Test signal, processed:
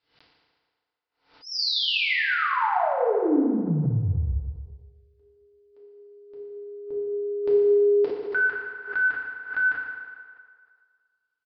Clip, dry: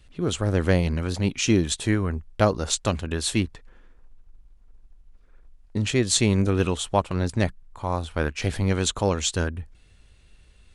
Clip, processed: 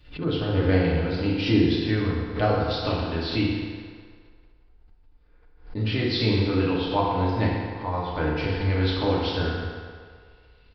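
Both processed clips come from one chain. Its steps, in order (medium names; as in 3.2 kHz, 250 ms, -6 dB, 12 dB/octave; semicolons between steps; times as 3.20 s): resampled via 11.025 kHz; FDN reverb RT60 1.9 s, low-frequency decay 0.7×, high-frequency decay 0.75×, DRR -7 dB; swell ahead of each attack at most 130 dB/s; trim -7.5 dB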